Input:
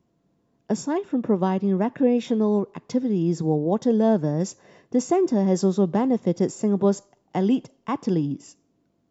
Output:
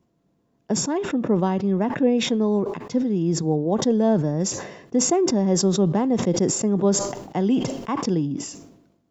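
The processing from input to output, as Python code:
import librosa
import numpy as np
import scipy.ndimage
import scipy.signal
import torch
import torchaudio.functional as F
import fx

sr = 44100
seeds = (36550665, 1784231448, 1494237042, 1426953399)

y = fx.sustainer(x, sr, db_per_s=62.0)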